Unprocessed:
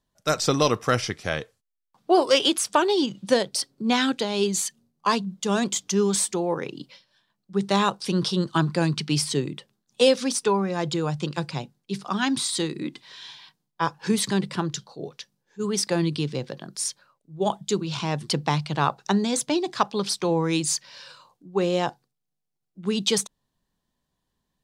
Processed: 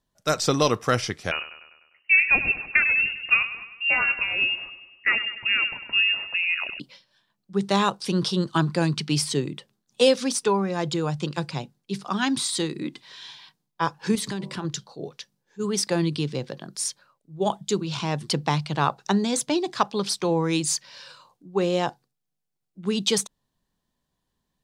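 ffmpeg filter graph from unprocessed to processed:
ffmpeg -i in.wav -filter_complex "[0:a]asettb=1/sr,asplit=3[link_01][link_02][link_03];[link_01]atrim=end=1.314[link_04];[link_02]atrim=start=1.31:end=6.8,asetpts=PTS-STARTPTS,afade=type=in:duration=0.004:curve=qsin,afade=type=out:start_time=5.486:duration=0.004:curve=qsin,aecho=1:1:100|200|300|400|500|600:0.237|0.13|0.0717|0.0395|0.0217|0.0119,atrim=end_sample=242109,lowpass=frequency=2600:width_type=q:width=0.5098,lowpass=frequency=2600:width_type=q:width=0.6013,lowpass=frequency=2600:width_type=q:width=0.9,lowpass=frequency=2600:width_type=q:width=2.563,afreqshift=-3000[link_05];[link_03]atrim=start=6.796[link_06];[link_04][link_05]acrossfade=duration=0.004:curve1=hsin:curve2=qsin[link_07];[link_07][link_06]acrossfade=duration=0.004:curve1=qsin:curve2=hsin,asettb=1/sr,asplit=3[link_08][link_09][link_10];[link_08]atrim=end=14.154[link_11];[link_09]atrim=start=14.15:end=14.65,asetpts=PTS-STARTPTS,afade=type=in:duration=0.004:curve=qsin,afade=type=out:start_time=0.496:duration=0.004:curve=qsin,bandreject=frequency=54.13:width_type=h:width=4,bandreject=frequency=108.26:width_type=h:width=4,bandreject=frequency=162.39:width_type=h:width=4,bandreject=frequency=216.52:width_type=h:width=4,bandreject=frequency=270.65:width_type=h:width=4,bandreject=frequency=324.78:width_type=h:width=4,bandreject=frequency=378.91:width_type=h:width=4,bandreject=frequency=433.04:width_type=h:width=4,bandreject=frequency=487.17:width_type=h:width=4,bandreject=frequency=541.3:width_type=h:width=4,bandreject=frequency=595.43:width_type=h:width=4,bandreject=frequency=649.56:width_type=h:width=4,bandreject=frequency=703.69:width_type=h:width=4,bandreject=frequency=757.82:width_type=h:width=4,bandreject=frequency=811.95:width_type=h:width=4,bandreject=frequency=866.08:width_type=h:width=4,bandreject=frequency=920.21:width_type=h:width=4,bandreject=frequency=974.34:width_type=h:width=4,bandreject=frequency=1028.47:width_type=h:width=4,bandreject=frequency=1082.6:width_type=h:width=4,bandreject=frequency=1136.73:width_type=h:width=4,acompressor=threshold=-26dB:ratio=6:attack=3.2:release=140:knee=1:detection=peak[link_12];[link_10]atrim=start=14.646[link_13];[link_11][link_12]acrossfade=duration=0.004:curve1=hsin:curve2=qsin[link_14];[link_14][link_13]acrossfade=duration=0.004:curve1=qsin:curve2=hsin" out.wav

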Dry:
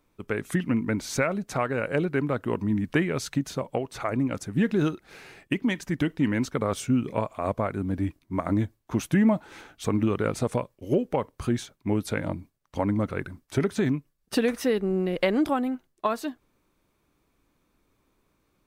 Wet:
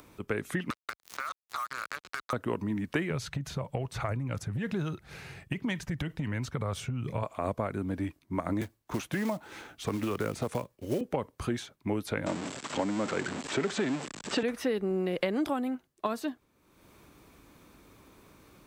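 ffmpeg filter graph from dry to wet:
ffmpeg -i in.wav -filter_complex "[0:a]asettb=1/sr,asplit=3[link_01][link_02][link_03];[link_01]atrim=end=0.704[link_04];[link_02]atrim=start=0.7:end=2.33,asetpts=PTS-STARTPTS,afade=type=in:duration=0.004:curve=qsin,afade=type=out:start_time=1.626:duration=0.004:curve=qsin,highpass=frequency=1200:width_type=q:width=9.3,acrusher=bits=3:mix=0:aa=0.5,acompressor=threshold=-31dB:ratio=8:attack=3.2:release=140:knee=1:detection=peak[link_05];[link_03]atrim=start=2.326[link_06];[link_04][link_05]acrossfade=duration=0.004:curve1=hsin:curve2=qsin[link_07];[link_07][link_06]acrossfade=duration=0.004:curve1=qsin:curve2=hsin,asettb=1/sr,asplit=3[link_08][link_09][link_10];[link_08]atrim=end=3.104[link_11];[link_09]atrim=start=3.1:end=7.23,asetpts=PTS-STARTPTS,afade=type=in:duration=0.004:curve=qsin,afade=type=out:start_time=4.126:duration=0.004:curve=qsin,lowshelf=frequency=190:width_type=q:width=1.5:gain=11,acompressor=threshold=-22dB:ratio=6:attack=3.2:release=140:knee=1:detection=peak[link_12];[link_10]atrim=start=7.226[link_13];[link_11][link_12]acrossfade=duration=0.004:curve1=hsin:curve2=qsin[link_14];[link_14][link_13]acrossfade=duration=0.004:curve1=qsin:curve2=hsin,asettb=1/sr,asplit=3[link_15][link_16][link_17];[link_15]atrim=end=8.614[link_18];[link_16]atrim=start=8.61:end=11.01,asetpts=PTS-STARTPTS,afade=type=in:duration=0.004:curve=qsin,afade=type=out:start_time=2.396:duration=0.004:curve=qsin,acrossover=split=360|770[link_19][link_20][link_21];[link_19]acompressor=threshold=-26dB:ratio=4[link_22];[link_20]acompressor=threshold=-33dB:ratio=4[link_23];[link_21]acompressor=threshold=-35dB:ratio=4[link_24];[link_22][link_23][link_24]amix=inputs=3:normalize=0,acrusher=bits=5:mode=log:mix=0:aa=0.000001[link_25];[link_17]atrim=start=11.006[link_26];[link_18][link_25]acrossfade=duration=0.004:curve1=hsin:curve2=qsin[link_27];[link_27][link_26]acrossfade=duration=0.004:curve1=qsin:curve2=hsin,asettb=1/sr,asplit=3[link_28][link_29][link_30];[link_28]atrim=end=12.264[link_31];[link_29]atrim=start=12.26:end=14.43,asetpts=PTS-STARTPTS,afade=type=in:duration=0.004:curve=qsin,afade=type=out:start_time=2.166:duration=0.004:curve=qsin,aeval=exprs='val(0)+0.5*0.0422*sgn(val(0))':channel_layout=same,lowpass=frequency=7700:width_type=q:width=9.2,acrossover=split=160 6100:gain=0.0631 1 0.0794[link_32][link_33][link_34];[link_32][link_33][link_34]amix=inputs=3:normalize=0[link_35];[link_30]atrim=start=14.426[link_36];[link_31][link_35]acrossfade=duration=0.004:curve1=hsin:curve2=qsin[link_37];[link_37][link_36]acrossfade=duration=0.004:curve1=qsin:curve2=hsin,acrossover=split=370|4100[link_38][link_39][link_40];[link_38]acompressor=threshold=-33dB:ratio=4[link_41];[link_39]acompressor=threshold=-30dB:ratio=4[link_42];[link_40]acompressor=threshold=-47dB:ratio=4[link_43];[link_41][link_42][link_43]amix=inputs=3:normalize=0,highpass=47,acompressor=mode=upward:threshold=-43dB:ratio=2.5" out.wav

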